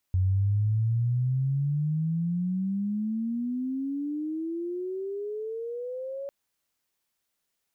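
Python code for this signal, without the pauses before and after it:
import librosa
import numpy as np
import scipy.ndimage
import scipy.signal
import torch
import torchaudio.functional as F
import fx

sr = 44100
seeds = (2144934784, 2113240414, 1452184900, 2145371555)

y = fx.riser_tone(sr, length_s=6.15, level_db=-20.5, wave='sine', hz=91.0, rise_st=31.5, swell_db=-12.0)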